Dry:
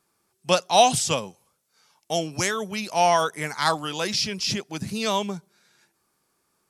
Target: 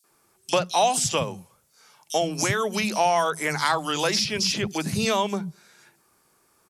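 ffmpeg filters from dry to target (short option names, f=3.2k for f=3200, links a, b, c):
-filter_complex "[0:a]acompressor=threshold=-27dB:ratio=4,acrossover=split=200|4000[a][b][c];[b]adelay=40[d];[a]adelay=110[e];[e][d][c]amix=inputs=3:normalize=0,volume=8dB"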